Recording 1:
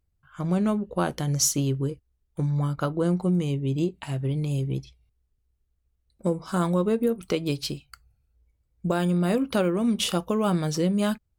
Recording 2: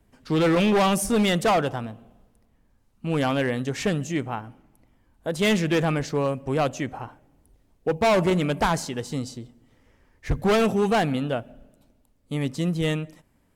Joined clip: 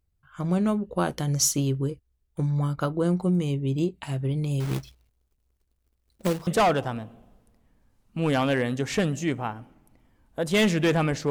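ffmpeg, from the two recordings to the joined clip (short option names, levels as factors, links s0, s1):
-filter_complex "[0:a]asettb=1/sr,asplit=3[s0][s1][s2];[s0]atrim=end=4.604[s3];[s1]atrim=start=4.6:end=6.47,asetpts=PTS-STARTPTS,afade=t=in:d=0.004:c=qsin,afade=t=out:st=1.866:d=0.004:c=qsin,acrusher=bits=2:mode=log:mix=0:aa=0.000001[s4];[s2]atrim=start=6.466[s5];[s3][s4]acrossfade=d=0.004:c1=hsin:c2=qsin[s6];[s6][s5]acrossfade=d=0.004:c1=qsin:c2=hsin,apad=whole_dur=11.3,atrim=end=11.3,atrim=end=6.472[s7];[1:a]atrim=start=1.348:end=6.18[s8];[s7][s8]acrossfade=d=0.004:c1=hsin:c2=hsin"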